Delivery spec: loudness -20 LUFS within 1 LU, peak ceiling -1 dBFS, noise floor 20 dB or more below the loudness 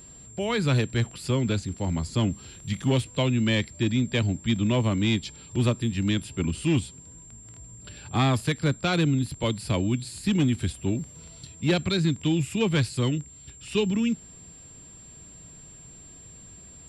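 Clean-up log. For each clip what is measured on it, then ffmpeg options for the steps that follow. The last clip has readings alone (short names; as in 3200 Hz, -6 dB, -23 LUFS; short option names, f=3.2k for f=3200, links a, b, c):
steady tone 7400 Hz; tone level -46 dBFS; loudness -26.0 LUFS; peak -14.5 dBFS; loudness target -20.0 LUFS
-> -af "bandreject=f=7.4k:w=30"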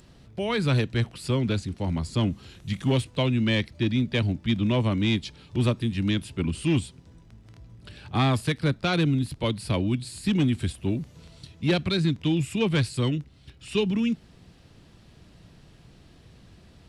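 steady tone none; loudness -26.0 LUFS; peak -14.5 dBFS; loudness target -20.0 LUFS
-> -af "volume=6dB"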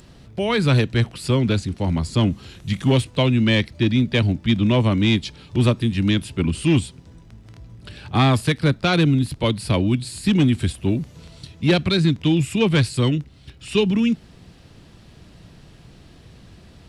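loudness -20.0 LUFS; peak -8.5 dBFS; noise floor -48 dBFS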